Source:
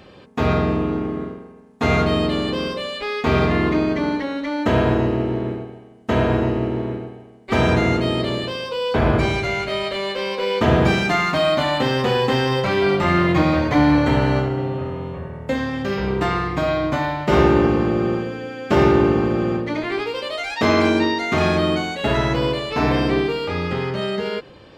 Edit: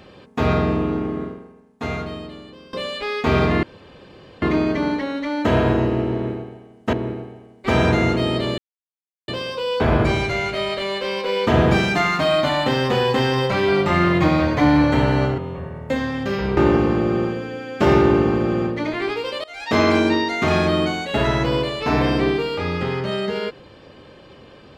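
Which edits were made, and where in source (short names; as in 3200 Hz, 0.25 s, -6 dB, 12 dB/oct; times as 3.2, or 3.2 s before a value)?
1.25–2.73 fade out quadratic, to -20.5 dB
3.63 insert room tone 0.79 s
6.14–6.77 cut
8.42 insert silence 0.70 s
14.52–14.97 cut
16.16–17.47 cut
20.34–20.66 fade in, from -23.5 dB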